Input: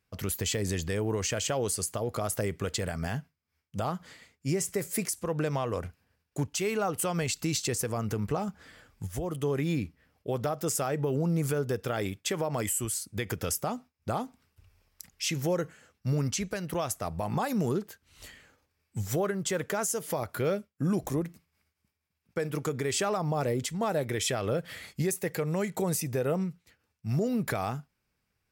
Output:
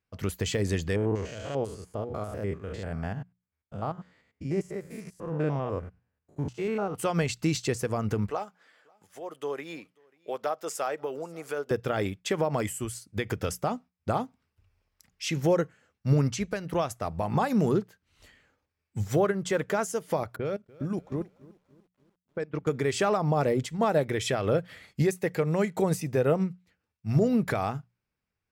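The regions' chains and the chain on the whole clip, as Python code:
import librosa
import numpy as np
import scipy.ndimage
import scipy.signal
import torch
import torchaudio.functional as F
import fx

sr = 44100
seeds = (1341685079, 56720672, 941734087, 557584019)

y = fx.chain(x, sr, fx.spec_steps(hold_ms=100),
    fx.high_shelf(hz=2800.0, db=-9.5), at=(0.96, 6.95))
y = fx.chain(y, sr, fx.highpass(hz=510.0, slope=12),
    fx.echo_single(ms=539, db=-22.0), at=(8.3, 11.71))
y = fx.chain(y, sr, fx.env_lowpass(base_hz=310.0, full_db=-24.0),
    fx.level_steps(step_db=16),
    fx.echo_crushed(ms=292, feedback_pct=55, bits=9, wet_db=-14.0), at=(20.36, 22.67))
y = fx.lowpass(y, sr, hz=3600.0, slope=6)
y = fx.hum_notches(y, sr, base_hz=60, count=3)
y = fx.upward_expand(y, sr, threshold_db=-49.0, expansion=1.5)
y = y * librosa.db_to_amplitude(6.5)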